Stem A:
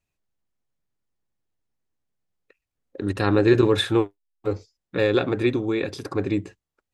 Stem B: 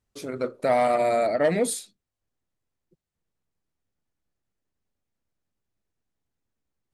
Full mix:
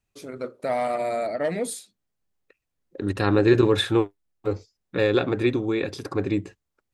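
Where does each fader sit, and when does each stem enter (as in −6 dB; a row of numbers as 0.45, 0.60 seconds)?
−0.5, −4.0 decibels; 0.00, 0.00 seconds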